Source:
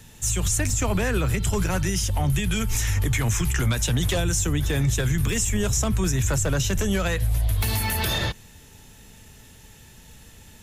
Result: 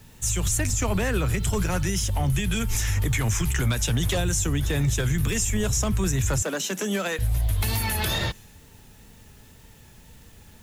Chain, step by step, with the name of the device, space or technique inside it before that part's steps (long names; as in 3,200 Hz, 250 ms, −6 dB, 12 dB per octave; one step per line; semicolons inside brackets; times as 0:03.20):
plain cassette with noise reduction switched in (one half of a high-frequency compander decoder only; tape wow and flutter; white noise bed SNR 34 dB)
0:06.42–0:07.19: Butterworth high-pass 190 Hz 48 dB per octave
level −1 dB